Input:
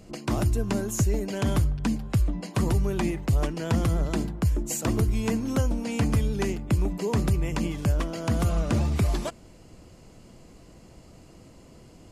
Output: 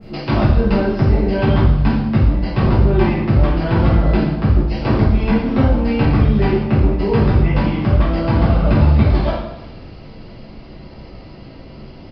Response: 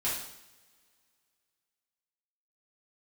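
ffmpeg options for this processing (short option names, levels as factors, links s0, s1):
-filter_complex "[0:a]aresample=11025,aeval=exprs='0.224*sin(PI/2*1.58*val(0)/0.224)':c=same,aresample=44100[s0];[1:a]atrim=start_sample=2205,asetrate=37926,aresample=44100[s1];[s0][s1]afir=irnorm=-1:irlink=0,adynamicequalizer=threshold=0.0158:dfrequency=2200:dqfactor=0.7:tfrequency=2200:tqfactor=0.7:attack=5:release=100:ratio=0.375:range=3:mode=cutabove:tftype=highshelf,volume=0.794"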